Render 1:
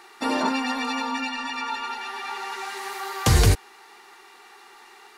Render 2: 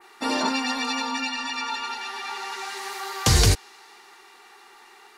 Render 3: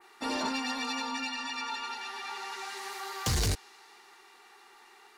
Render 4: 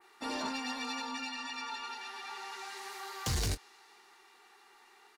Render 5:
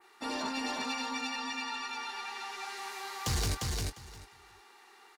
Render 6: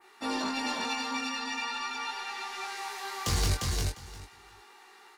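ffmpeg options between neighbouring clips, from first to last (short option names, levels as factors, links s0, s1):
-af "adynamicequalizer=threshold=0.00708:dfrequency=5300:dqfactor=0.77:tfrequency=5300:tqfactor=0.77:attack=5:release=100:ratio=0.375:range=4:mode=boostabove:tftype=bell,volume=0.841"
-af "asoftclip=type=tanh:threshold=0.126,volume=0.501"
-filter_complex "[0:a]asplit=2[s0][s1];[s1]adelay=24,volume=0.224[s2];[s0][s2]amix=inputs=2:normalize=0,volume=0.596"
-af "aecho=1:1:351|702|1053:0.708|0.113|0.0181,volume=1.12"
-af "flanger=delay=18.5:depth=3.7:speed=0.4,volume=2"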